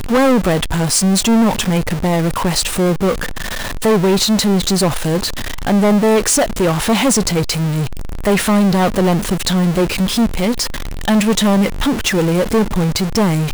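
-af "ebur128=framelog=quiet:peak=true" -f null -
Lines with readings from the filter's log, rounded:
Integrated loudness:
  I:         -15.4 LUFS
  Threshold: -25.4 LUFS
Loudness range:
  LRA:         1.4 LU
  Threshold: -35.5 LUFS
  LRA low:   -16.0 LUFS
  LRA high:  -14.6 LUFS
True peak:
  Peak:       -5.4 dBFS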